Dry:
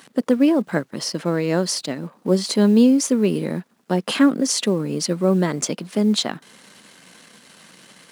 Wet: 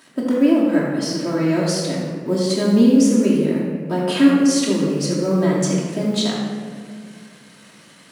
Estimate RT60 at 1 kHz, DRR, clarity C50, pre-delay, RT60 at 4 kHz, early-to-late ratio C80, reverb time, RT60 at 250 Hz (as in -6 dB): 1.6 s, -6.0 dB, 0.0 dB, 3 ms, 1.1 s, 1.5 dB, 1.9 s, 2.5 s